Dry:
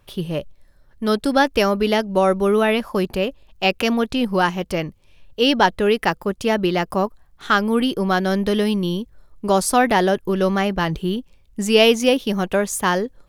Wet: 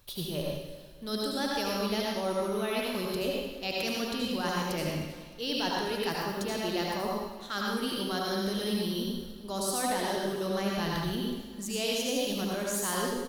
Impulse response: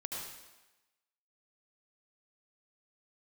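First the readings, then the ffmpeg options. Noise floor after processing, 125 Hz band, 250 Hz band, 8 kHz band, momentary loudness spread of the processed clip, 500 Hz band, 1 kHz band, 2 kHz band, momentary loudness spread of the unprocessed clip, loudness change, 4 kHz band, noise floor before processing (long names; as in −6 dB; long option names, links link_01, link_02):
−45 dBFS, −11.0 dB, −12.0 dB, −5.5 dB, 6 LU, −13.0 dB, −13.0 dB, −13.0 dB, 10 LU, −12.0 dB, −8.0 dB, −54 dBFS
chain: -filter_complex "[0:a]aexciter=amount=2.4:drive=7.2:freq=5400,areverse,acompressor=threshold=-30dB:ratio=6,areverse,equalizer=frequency=4000:width=3.4:gain=14,aecho=1:1:307|614|921|1228:0.126|0.0592|0.0278|0.0131[link_01];[1:a]atrim=start_sample=2205[link_02];[link_01][link_02]afir=irnorm=-1:irlink=0"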